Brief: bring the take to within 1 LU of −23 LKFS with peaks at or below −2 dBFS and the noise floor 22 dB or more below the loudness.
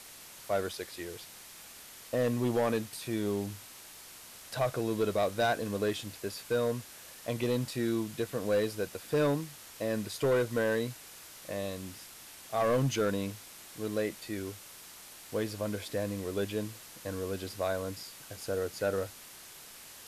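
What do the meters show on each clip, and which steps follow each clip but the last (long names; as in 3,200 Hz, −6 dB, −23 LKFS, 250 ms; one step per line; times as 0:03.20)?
share of clipped samples 0.9%; peaks flattened at −22.5 dBFS; background noise floor −50 dBFS; target noise floor −55 dBFS; integrated loudness −33.0 LKFS; sample peak −22.5 dBFS; target loudness −23.0 LKFS
→ clipped peaks rebuilt −22.5 dBFS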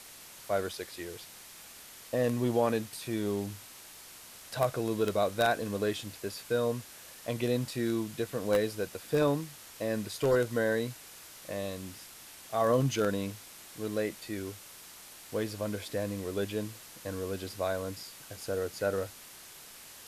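share of clipped samples 0.0%; background noise floor −50 dBFS; target noise floor −55 dBFS
→ noise reduction from a noise print 6 dB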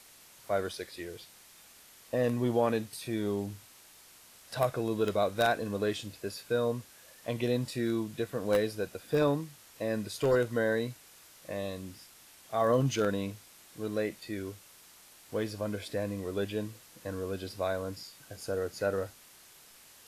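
background noise floor −56 dBFS; integrated loudness −32.5 LKFS; sample peak −13.5 dBFS; target loudness −23.0 LKFS
→ level +9.5 dB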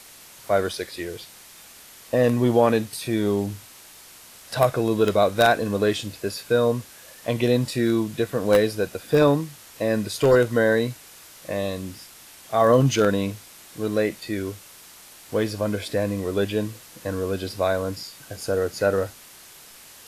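integrated loudness −23.0 LKFS; sample peak −4.0 dBFS; background noise floor −47 dBFS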